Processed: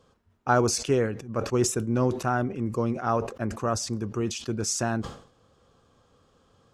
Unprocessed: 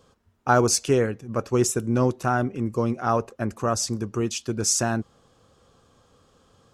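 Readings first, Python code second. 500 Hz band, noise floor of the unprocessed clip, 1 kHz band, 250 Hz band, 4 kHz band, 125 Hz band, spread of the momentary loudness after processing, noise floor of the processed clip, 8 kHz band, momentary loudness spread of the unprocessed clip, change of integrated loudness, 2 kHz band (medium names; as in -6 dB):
-2.5 dB, -62 dBFS, -3.0 dB, -2.5 dB, -3.5 dB, -2.5 dB, 7 LU, -64 dBFS, -5.0 dB, 8 LU, -3.0 dB, -3.0 dB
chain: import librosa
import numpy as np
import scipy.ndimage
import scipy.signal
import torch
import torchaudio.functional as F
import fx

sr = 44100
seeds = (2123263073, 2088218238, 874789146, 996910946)

y = fx.high_shelf(x, sr, hz=6900.0, db=-7.5)
y = fx.sustainer(y, sr, db_per_s=110.0)
y = y * 10.0 ** (-3.0 / 20.0)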